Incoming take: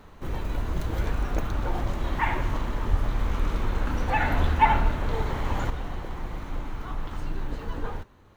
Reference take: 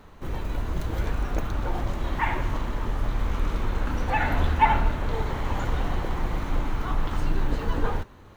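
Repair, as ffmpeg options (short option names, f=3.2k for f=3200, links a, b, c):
-filter_complex "[0:a]asplit=3[a][b][c];[a]afade=t=out:st=2.9:d=0.02[d];[b]highpass=f=140:w=0.5412,highpass=f=140:w=1.3066,afade=t=in:st=2.9:d=0.02,afade=t=out:st=3.02:d=0.02[e];[c]afade=t=in:st=3.02:d=0.02[f];[d][e][f]amix=inputs=3:normalize=0,asetnsamples=n=441:p=0,asendcmd='5.7 volume volume 6.5dB',volume=0dB"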